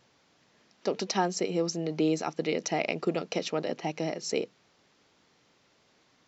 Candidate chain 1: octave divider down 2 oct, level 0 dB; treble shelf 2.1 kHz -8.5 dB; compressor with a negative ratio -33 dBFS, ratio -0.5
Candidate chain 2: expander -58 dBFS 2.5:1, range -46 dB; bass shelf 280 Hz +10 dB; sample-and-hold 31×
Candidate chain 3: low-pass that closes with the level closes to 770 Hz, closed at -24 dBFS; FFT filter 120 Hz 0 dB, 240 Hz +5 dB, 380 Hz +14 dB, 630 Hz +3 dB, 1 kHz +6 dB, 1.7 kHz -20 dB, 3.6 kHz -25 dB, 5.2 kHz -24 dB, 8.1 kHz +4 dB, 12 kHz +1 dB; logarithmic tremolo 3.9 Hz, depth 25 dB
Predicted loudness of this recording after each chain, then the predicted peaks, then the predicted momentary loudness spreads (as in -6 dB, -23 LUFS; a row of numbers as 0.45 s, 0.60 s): -35.5 LUFS, -27.5 LUFS, -27.0 LUFS; -13.0 dBFS, -11.5 dBFS, -6.0 dBFS; 5 LU, 7 LU, 10 LU